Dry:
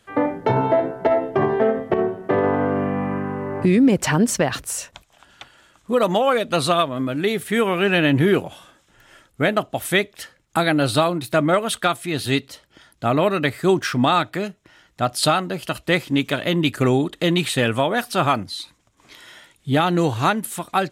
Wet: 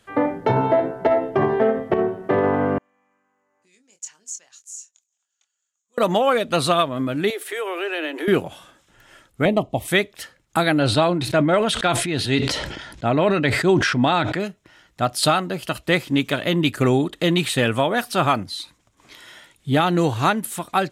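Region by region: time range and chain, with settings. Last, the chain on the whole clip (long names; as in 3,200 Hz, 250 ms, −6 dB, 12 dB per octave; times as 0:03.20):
0:02.78–0:05.98: resonant band-pass 6,800 Hz, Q 10 + double-tracking delay 24 ms −7.5 dB + one half of a high-frequency compander decoder only
0:07.30–0:08.28: Butterworth high-pass 310 Hz 72 dB per octave + downward compressor 2 to 1, threshold −28 dBFS
0:09.45–0:09.88: Butterworth band-reject 1,500 Hz, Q 1.7 + spectral tilt −2 dB per octave
0:10.79–0:14.40: high-frequency loss of the air 71 metres + notch filter 1,200 Hz, Q 9.1 + level that may fall only so fast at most 42 dB per second
whole clip: no processing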